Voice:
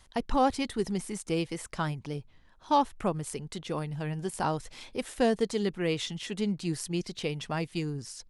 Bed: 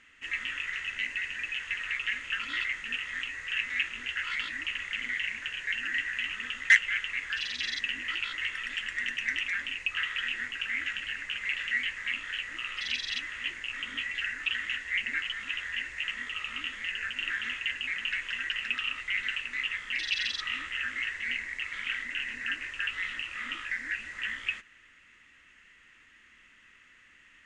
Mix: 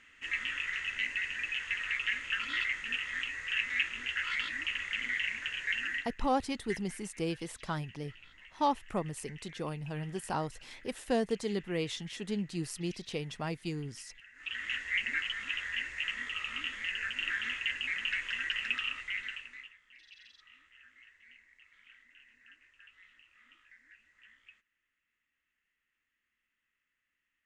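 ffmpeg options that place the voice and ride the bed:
-filter_complex "[0:a]adelay=5900,volume=-4.5dB[a];[1:a]volume=20.5dB,afade=t=out:st=5.83:d=0.31:silence=0.0794328,afade=t=in:st=14.33:d=0.43:silence=0.0841395,afade=t=out:st=18.71:d=1.03:silence=0.0595662[b];[a][b]amix=inputs=2:normalize=0"

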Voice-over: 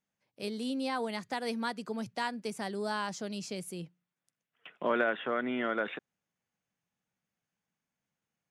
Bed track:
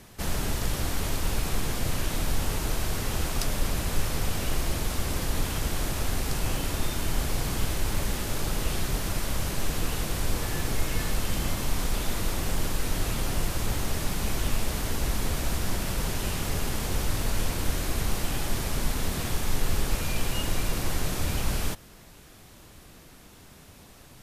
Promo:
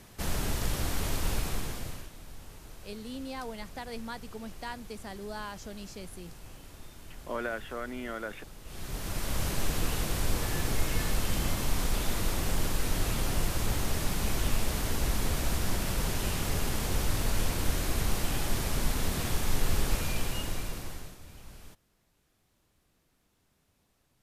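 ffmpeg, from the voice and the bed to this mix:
-filter_complex "[0:a]adelay=2450,volume=-5.5dB[a];[1:a]volume=16dB,afade=t=out:st=1.32:d=0.79:silence=0.133352,afade=t=in:st=8.64:d=0.8:silence=0.11885,afade=t=out:st=19.92:d=1.26:silence=0.1[b];[a][b]amix=inputs=2:normalize=0"

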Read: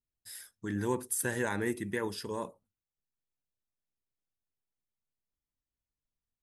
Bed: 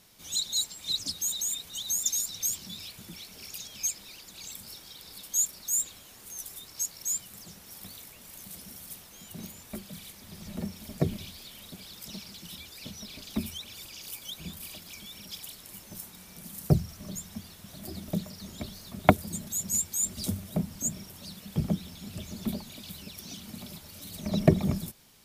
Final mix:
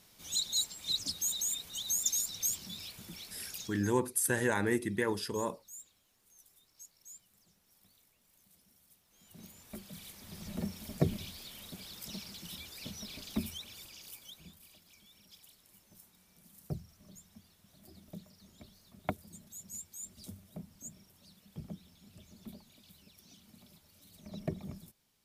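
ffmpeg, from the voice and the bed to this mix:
-filter_complex "[0:a]adelay=3050,volume=2dB[a];[1:a]volume=16.5dB,afade=t=out:st=3.62:d=0.25:silence=0.11885,afade=t=in:st=9.04:d=1.34:silence=0.105925,afade=t=out:st=13.15:d=1.44:silence=0.188365[b];[a][b]amix=inputs=2:normalize=0"

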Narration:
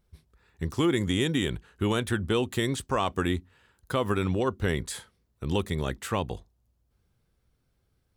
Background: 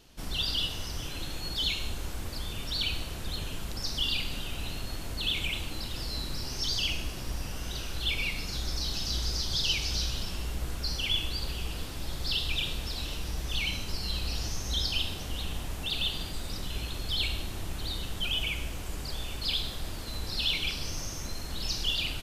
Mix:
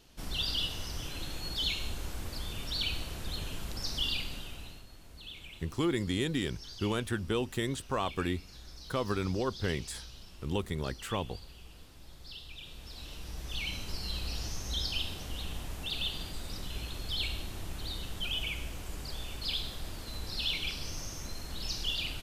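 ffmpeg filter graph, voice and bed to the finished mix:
-filter_complex "[0:a]adelay=5000,volume=-5.5dB[a];[1:a]volume=10dB,afade=t=out:st=4.05:d=0.81:silence=0.199526,afade=t=in:st=12.6:d=1.29:silence=0.237137[b];[a][b]amix=inputs=2:normalize=0"

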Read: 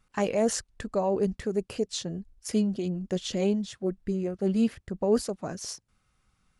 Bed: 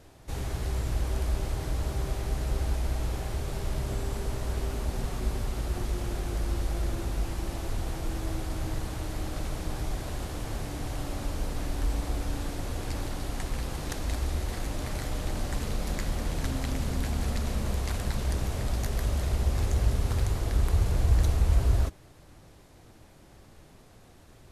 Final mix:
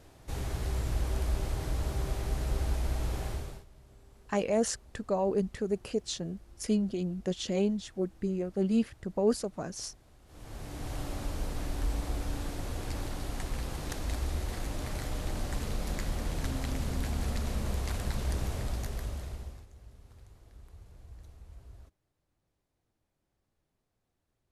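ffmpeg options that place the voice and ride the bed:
-filter_complex "[0:a]adelay=4150,volume=-2.5dB[a];[1:a]volume=20.5dB,afade=t=out:st=3.27:d=0.38:silence=0.0668344,afade=t=in:st=10.25:d=0.7:silence=0.0749894,afade=t=out:st=18.49:d=1.17:silence=0.0595662[b];[a][b]amix=inputs=2:normalize=0"

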